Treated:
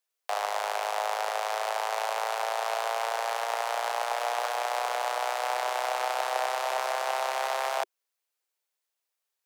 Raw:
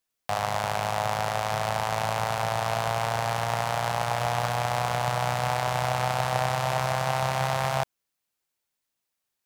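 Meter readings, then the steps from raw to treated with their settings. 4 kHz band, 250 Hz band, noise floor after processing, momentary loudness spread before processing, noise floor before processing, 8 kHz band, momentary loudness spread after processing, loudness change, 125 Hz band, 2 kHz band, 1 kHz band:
−2.0 dB, below −20 dB, −85 dBFS, 2 LU, −83 dBFS, −2.0 dB, 1 LU, −2.5 dB, below −40 dB, −2.0 dB, −2.0 dB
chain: Butterworth high-pass 380 Hz 72 dB per octave
level −2 dB

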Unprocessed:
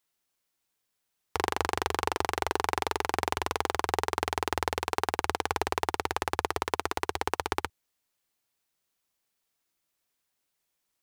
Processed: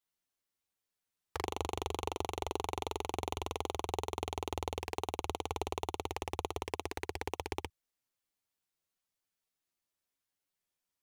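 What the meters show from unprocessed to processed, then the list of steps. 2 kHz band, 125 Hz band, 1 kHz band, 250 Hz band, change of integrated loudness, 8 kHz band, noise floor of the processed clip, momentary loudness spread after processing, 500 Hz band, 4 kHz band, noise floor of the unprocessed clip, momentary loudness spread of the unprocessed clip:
−13.0 dB, −2.5 dB, −9.5 dB, −5.0 dB, −8.5 dB, −8.0 dB, below −85 dBFS, 3 LU, −6.0 dB, −7.5 dB, −81 dBFS, 2 LU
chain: low-shelf EQ 190 Hz +3.5 dB
flanger swept by the level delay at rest 10.9 ms, full sweep at −27.5 dBFS
level −5.5 dB

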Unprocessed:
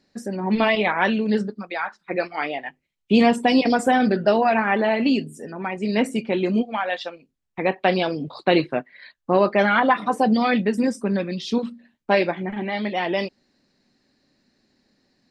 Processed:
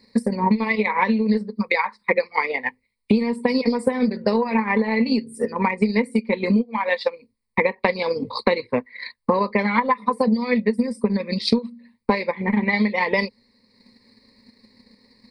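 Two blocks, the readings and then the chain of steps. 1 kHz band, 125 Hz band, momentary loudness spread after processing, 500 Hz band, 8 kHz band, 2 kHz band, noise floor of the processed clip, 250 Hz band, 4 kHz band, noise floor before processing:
−1.5 dB, +1.0 dB, 5 LU, −0.5 dB, can't be measured, +0.5 dB, −70 dBFS, +0.5 dB, −2.0 dB, −76 dBFS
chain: EQ curve with evenly spaced ripples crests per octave 0.93, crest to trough 18 dB
transient designer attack +9 dB, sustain −5 dB
downward compressor 12 to 1, threshold −21 dBFS, peak gain reduction 23.5 dB
level +5 dB

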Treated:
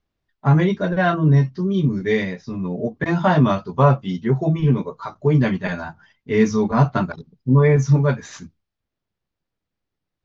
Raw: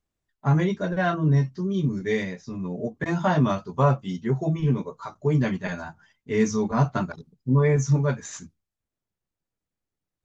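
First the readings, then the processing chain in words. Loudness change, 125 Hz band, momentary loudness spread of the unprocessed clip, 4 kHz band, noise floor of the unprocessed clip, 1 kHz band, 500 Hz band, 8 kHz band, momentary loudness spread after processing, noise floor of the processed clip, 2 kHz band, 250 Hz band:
+5.5 dB, +5.5 dB, 11 LU, +5.0 dB, below −85 dBFS, +5.5 dB, +5.5 dB, can't be measured, 11 LU, −82 dBFS, +5.5 dB, +5.5 dB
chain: low-pass filter 5,200 Hz 24 dB per octave
level +5.5 dB

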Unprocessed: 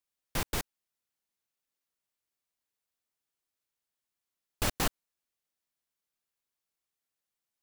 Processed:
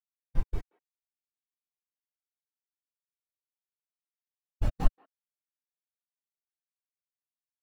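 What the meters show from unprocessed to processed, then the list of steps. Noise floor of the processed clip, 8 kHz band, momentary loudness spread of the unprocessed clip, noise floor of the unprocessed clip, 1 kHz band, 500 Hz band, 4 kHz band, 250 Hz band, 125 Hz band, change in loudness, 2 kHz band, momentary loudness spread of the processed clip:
below −85 dBFS, −23.5 dB, 7 LU, below −85 dBFS, −6.0 dB, −6.5 dB, −18.5 dB, −2.0 dB, +4.0 dB, −3.0 dB, −14.5 dB, 8 LU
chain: far-end echo of a speakerphone 180 ms, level −9 dB
every bin expanded away from the loudest bin 2.5 to 1
level +7 dB

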